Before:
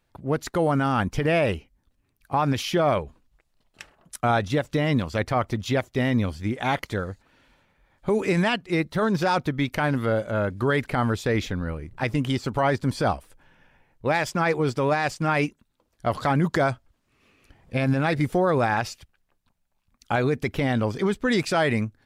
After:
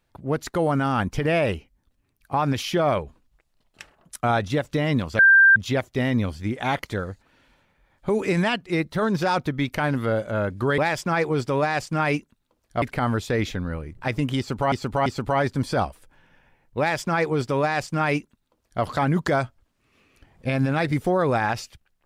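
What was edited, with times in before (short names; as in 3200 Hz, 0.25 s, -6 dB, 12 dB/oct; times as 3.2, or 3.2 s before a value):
5.19–5.56 bleep 1580 Hz -10 dBFS
12.34–12.68 loop, 3 plays
14.07–16.11 copy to 10.78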